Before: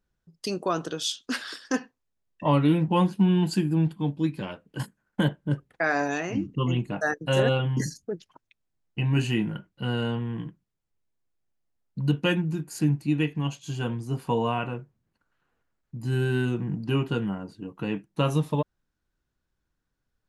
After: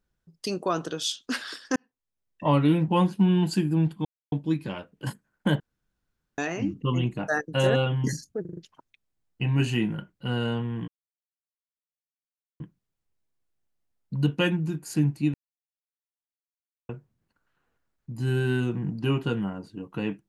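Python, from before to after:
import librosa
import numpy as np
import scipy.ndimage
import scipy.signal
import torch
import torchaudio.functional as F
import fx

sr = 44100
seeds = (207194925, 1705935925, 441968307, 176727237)

y = fx.edit(x, sr, fx.fade_in_span(start_s=1.76, length_s=0.72),
    fx.insert_silence(at_s=4.05, length_s=0.27),
    fx.room_tone_fill(start_s=5.33, length_s=0.78),
    fx.stutter(start_s=8.14, slice_s=0.04, count=5),
    fx.insert_silence(at_s=10.45, length_s=1.72),
    fx.silence(start_s=13.19, length_s=1.55), tone=tone)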